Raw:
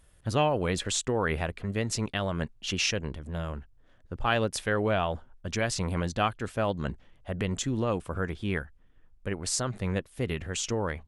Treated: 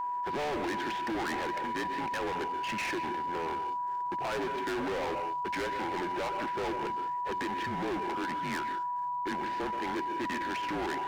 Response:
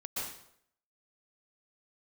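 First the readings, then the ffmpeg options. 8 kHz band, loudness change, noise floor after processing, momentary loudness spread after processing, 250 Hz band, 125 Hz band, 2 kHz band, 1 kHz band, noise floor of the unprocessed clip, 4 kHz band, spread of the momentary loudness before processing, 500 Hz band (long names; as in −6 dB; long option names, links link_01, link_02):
−16.0 dB, −3.0 dB, −34 dBFS, 1 LU, −4.0 dB, −16.5 dB, −1.5 dB, +4.5 dB, −59 dBFS, −7.5 dB, 9 LU, −5.0 dB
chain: -filter_complex "[0:a]asplit=2[link_01][link_02];[link_02]highpass=frequency=720:poles=1,volume=17dB,asoftclip=type=tanh:threshold=-11.5dB[link_03];[link_01][link_03]amix=inputs=2:normalize=0,lowpass=frequency=1100:poles=1,volume=-6dB,equalizer=frequency=500:width_type=o:width=0.33:gain=6,equalizer=frequency=800:width_type=o:width=0.33:gain=-5,equalizer=frequency=1250:width_type=o:width=0.33:gain=-5,asplit=2[link_04][link_05];[1:a]atrim=start_sample=2205,afade=type=out:start_time=0.26:duration=0.01,atrim=end_sample=11907[link_06];[link_05][link_06]afir=irnorm=-1:irlink=0,volume=-12.5dB[link_07];[link_04][link_07]amix=inputs=2:normalize=0,afreqshift=-160,highpass=280,equalizer=frequency=290:width_type=q:width=4:gain=-6,equalizer=frequency=450:width_type=q:width=4:gain=-4,equalizer=frequency=810:width_type=q:width=4:gain=7,equalizer=frequency=1200:width_type=q:width=4:gain=-8,equalizer=frequency=1800:width_type=q:width=4:gain=6,lowpass=frequency=2400:width=0.5412,lowpass=frequency=2400:width=1.3066,asplit=2[link_08][link_09];[link_09]acompressor=threshold=-36dB:ratio=6,volume=-2dB[link_10];[link_08][link_10]amix=inputs=2:normalize=0,aeval=exprs='val(0)+0.0316*sin(2*PI*980*n/s)':channel_layout=same,asoftclip=type=hard:threshold=-30dB,volume=-1dB"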